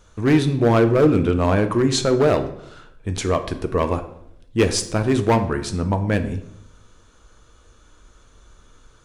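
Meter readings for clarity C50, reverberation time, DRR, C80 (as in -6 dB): 12.0 dB, 0.75 s, 7.5 dB, 15.0 dB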